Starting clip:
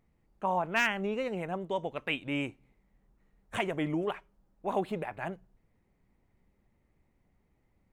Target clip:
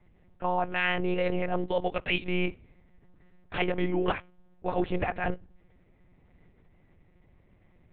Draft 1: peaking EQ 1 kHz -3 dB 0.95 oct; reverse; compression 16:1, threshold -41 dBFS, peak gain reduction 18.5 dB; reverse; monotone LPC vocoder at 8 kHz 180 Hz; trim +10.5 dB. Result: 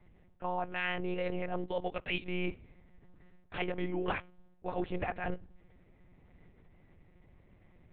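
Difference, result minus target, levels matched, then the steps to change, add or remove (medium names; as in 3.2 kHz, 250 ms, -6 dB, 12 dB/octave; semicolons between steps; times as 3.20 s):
compression: peak gain reduction +7 dB
change: compression 16:1, threshold -33.5 dBFS, peak gain reduction 11.5 dB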